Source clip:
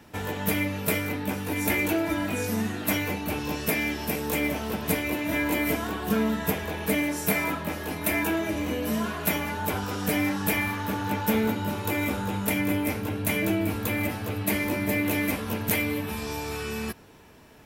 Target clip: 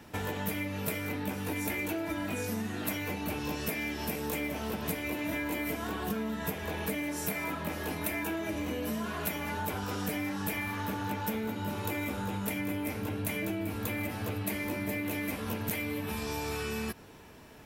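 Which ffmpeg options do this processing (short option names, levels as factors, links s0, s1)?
-af "acompressor=threshold=0.0282:ratio=6"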